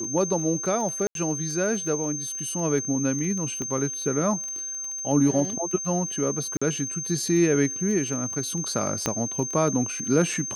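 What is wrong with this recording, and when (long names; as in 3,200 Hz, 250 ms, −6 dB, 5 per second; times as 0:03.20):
surface crackle 20 per second −30 dBFS
whistle 6,300 Hz −30 dBFS
0:01.07–0:01.15: drop-out 82 ms
0:03.62: click −19 dBFS
0:06.57–0:06.62: drop-out 45 ms
0:09.06: click −9 dBFS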